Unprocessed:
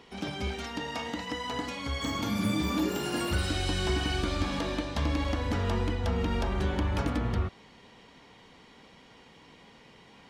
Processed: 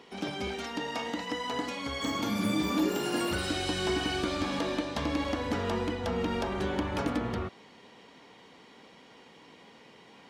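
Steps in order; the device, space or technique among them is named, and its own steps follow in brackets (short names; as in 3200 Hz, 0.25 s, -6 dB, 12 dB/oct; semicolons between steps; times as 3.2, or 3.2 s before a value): filter by subtraction (in parallel: LPF 330 Hz 12 dB/oct + phase invert)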